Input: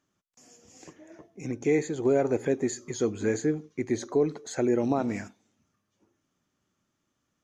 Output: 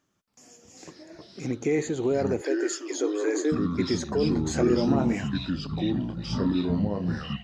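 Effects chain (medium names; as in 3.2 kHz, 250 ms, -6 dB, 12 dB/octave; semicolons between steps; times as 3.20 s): peak limiter -20 dBFS, peak gain reduction 7.5 dB; 4.29–5.16 s: doubling 22 ms -5.5 dB; ever faster or slower copies 277 ms, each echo -5 st, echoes 3; 2.41–3.52 s: brick-wall FIR high-pass 280 Hz; trim +3 dB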